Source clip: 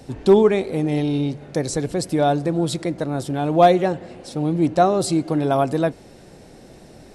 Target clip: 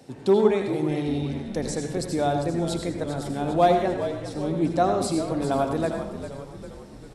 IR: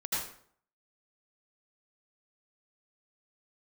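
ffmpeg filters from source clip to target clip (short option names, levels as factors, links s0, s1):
-filter_complex "[0:a]highpass=140,asplit=7[s0][s1][s2][s3][s4][s5][s6];[s1]adelay=399,afreqshift=-64,volume=0.299[s7];[s2]adelay=798,afreqshift=-128,volume=0.164[s8];[s3]adelay=1197,afreqshift=-192,volume=0.0902[s9];[s4]adelay=1596,afreqshift=-256,volume=0.0495[s10];[s5]adelay=1995,afreqshift=-320,volume=0.0272[s11];[s6]adelay=2394,afreqshift=-384,volume=0.015[s12];[s0][s7][s8][s9][s10][s11][s12]amix=inputs=7:normalize=0,asplit=2[s13][s14];[1:a]atrim=start_sample=2205[s15];[s14][s15]afir=irnorm=-1:irlink=0,volume=0.398[s16];[s13][s16]amix=inputs=2:normalize=0,volume=0.398"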